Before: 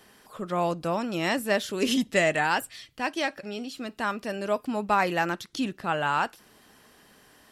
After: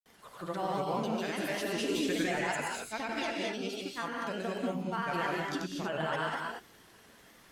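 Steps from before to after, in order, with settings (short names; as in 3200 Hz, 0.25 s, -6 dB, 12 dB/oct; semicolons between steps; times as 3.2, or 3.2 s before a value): limiter -21.5 dBFS, peak gain reduction 11 dB; crackle 34/s -46 dBFS; grains, pitch spread up and down by 3 st; non-linear reverb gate 0.26 s rising, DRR -1 dB; gain -3.5 dB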